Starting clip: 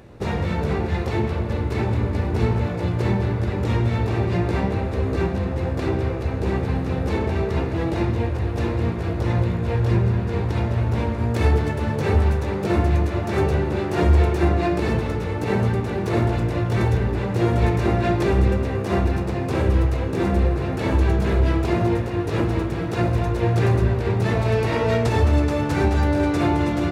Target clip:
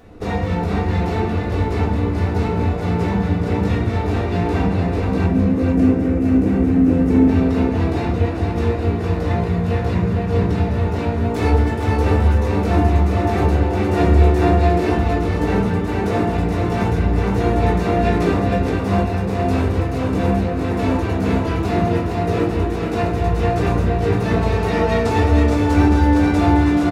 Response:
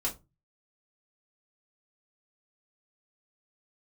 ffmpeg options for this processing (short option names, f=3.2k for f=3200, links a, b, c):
-filter_complex "[0:a]asettb=1/sr,asplit=3[a][b][c];[a]atrim=end=5.264[d];[b]atrim=start=5.26:end=7.28,asetpts=PTS-STARTPTS,afade=t=in:d=0.004:c=qsin,afade=t=out:st=2.016:d=0.004:c=qsin,equalizer=f=125:t=o:w=1:g=-5,equalizer=f=250:t=o:w=1:g=11,equalizer=f=1k:t=o:w=1:g=-6,equalizer=f=4k:t=o:w=1:g=-9[e];[c]atrim=start=7.276[f];[d][e]acrossfade=d=0.004:c1=hsin:c2=qsin[g];[g][f]acrossfade=d=0.004:c1=qsin:c2=hsin,aecho=1:1:461:0.631[h];[1:a]atrim=start_sample=2205[i];[h][i]afir=irnorm=-1:irlink=0,volume=-2.5dB"